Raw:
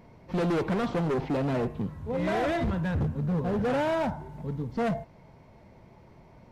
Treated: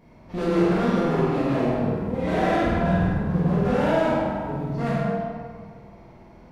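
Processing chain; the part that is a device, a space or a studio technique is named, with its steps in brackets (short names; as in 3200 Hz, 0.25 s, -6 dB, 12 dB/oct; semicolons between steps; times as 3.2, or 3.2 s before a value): tunnel (flutter echo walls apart 8.5 m, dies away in 0.64 s; reverb RT60 2.1 s, pre-delay 11 ms, DRR -7 dB); gain -4 dB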